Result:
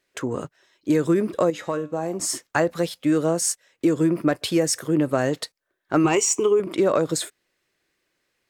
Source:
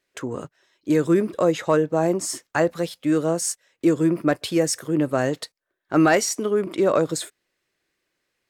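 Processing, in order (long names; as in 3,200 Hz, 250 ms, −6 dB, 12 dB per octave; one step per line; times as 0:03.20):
0:06.04–0:06.60: EQ curve with evenly spaced ripples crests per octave 0.71, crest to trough 15 dB
downward compressor, threshold −18 dBFS, peak gain reduction 7.5 dB
0:01.50–0:02.20: tuned comb filter 100 Hz, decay 0.39 s, harmonics all, mix 60%
level +2.5 dB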